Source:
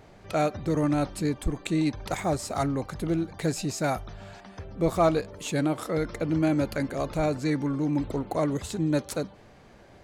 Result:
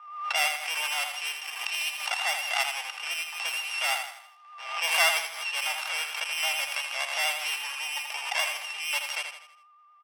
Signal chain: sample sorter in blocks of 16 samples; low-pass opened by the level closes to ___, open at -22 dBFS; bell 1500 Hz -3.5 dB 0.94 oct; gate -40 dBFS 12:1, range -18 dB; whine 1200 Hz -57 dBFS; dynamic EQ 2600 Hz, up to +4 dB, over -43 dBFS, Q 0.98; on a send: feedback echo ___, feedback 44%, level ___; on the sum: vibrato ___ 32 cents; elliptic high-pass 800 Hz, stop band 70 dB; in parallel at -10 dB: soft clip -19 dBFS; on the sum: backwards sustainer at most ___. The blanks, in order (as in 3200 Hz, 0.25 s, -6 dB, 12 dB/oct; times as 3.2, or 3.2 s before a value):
2900 Hz, 81 ms, -6.5 dB, 8.7 Hz, 66 dB/s